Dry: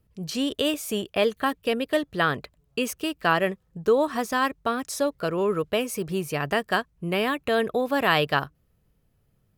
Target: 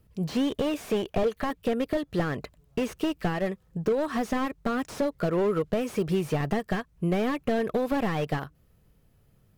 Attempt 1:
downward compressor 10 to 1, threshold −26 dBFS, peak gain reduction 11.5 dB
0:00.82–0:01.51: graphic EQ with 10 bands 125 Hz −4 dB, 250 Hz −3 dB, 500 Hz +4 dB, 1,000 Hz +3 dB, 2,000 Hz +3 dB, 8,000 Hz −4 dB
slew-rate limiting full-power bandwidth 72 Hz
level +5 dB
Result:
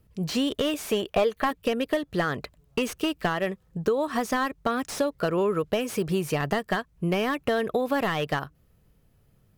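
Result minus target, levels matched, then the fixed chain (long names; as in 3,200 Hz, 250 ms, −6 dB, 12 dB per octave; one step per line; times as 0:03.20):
slew-rate limiting: distortion −8 dB
downward compressor 10 to 1, threshold −26 dBFS, peak gain reduction 11.5 dB
0:00.82–0:01.51: graphic EQ with 10 bands 125 Hz −4 dB, 250 Hz −3 dB, 500 Hz +4 dB, 1,000 Hz +3 dB, 2,000 Hz +3 dB, 8,000 Hz −4 dB
slew-rate limiting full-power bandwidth 24.5 Hz
level +5 dB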